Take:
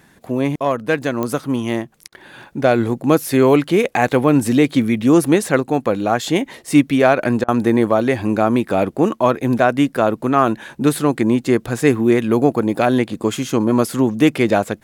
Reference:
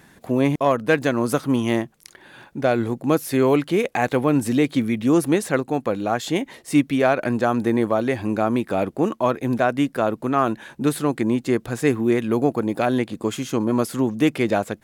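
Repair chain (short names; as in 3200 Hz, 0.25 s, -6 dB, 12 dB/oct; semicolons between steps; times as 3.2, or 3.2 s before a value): de-click; interpolate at 2.08/7.44, 42 ms; gain correction -5 dB, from 1.92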